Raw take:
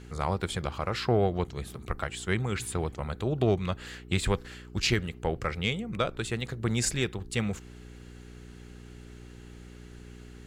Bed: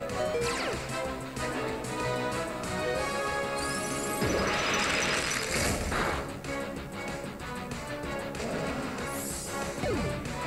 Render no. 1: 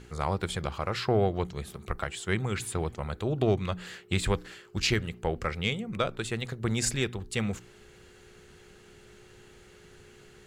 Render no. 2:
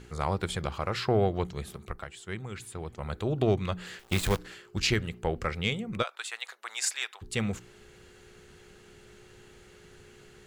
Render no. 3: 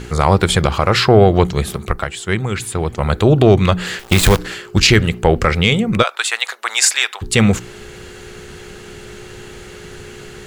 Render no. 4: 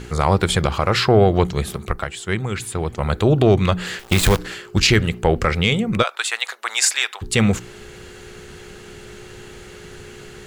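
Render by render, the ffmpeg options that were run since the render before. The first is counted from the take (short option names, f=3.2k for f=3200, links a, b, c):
-af "bandreject=f=60:t=h:w=4,bandreject=f=120:t=h:w=4,bandreject=f=180:t=h:w=4,bandreject=f=240:t=h:w=4,bandreject=f=300:t=h:w=4"
-filter_complex "[0:a]asettb=1/sr,asplit=3[a][b][c];[a]atrim=end=3.994[d];[b]atrim=start=3.99:end=4.39,asetpts=PTS-STARTPTS,afade=t=in:d=0.004:c=qsin,afade=t=out:st=0.396:d=0.004:c=qsin,acrusher=bits=6:dc=4:mix=0:aa=0.000001[e];[c]atrim=start=4.386[f];[d][e]acrossfade=d=0.004:c1=hsin:c2=qsin[g];[g][f]acrossfade=d=0.004:c1=qsin:c2=hsin,asplit=3[h][i][j];[h]afade=t=out:st=6.02:d=0.02[k];[i]highpass=f=800:w=0.5412,highpass=f=800:w=1.3066,afade=t=in:st=6.02:d=0.02,afade=t=out:st=7.21:d=0.02[l];[j]afade=t=in:st=7.21:d=0.02[m];[k][l][m]amix=inputs=3:normalize=0,asplit=3[n][o][p];[n]atrim=end=2.14,asetpts=PTS-STARTPTS,afade=t=out:st=1.74:d=0.4:c=qua:silence=0.375837[q];[o]atrim=start=2.14:end=2.71,asetpts=PTS-STARTPTS,volume=-8.5dB[r];[p]atrim=start=2.71,asetpts=PTS-STARTPTS,afade=t=in:d=0.4:c=qua:silence=0.375837[s];[q][r][s]concat=n=3:v=0:a=1"
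-af "acontrast=68,alimiter=level_in=12dB:limit=-1dB:release=50:level=0:latency=1"
-af "volume=-4dB"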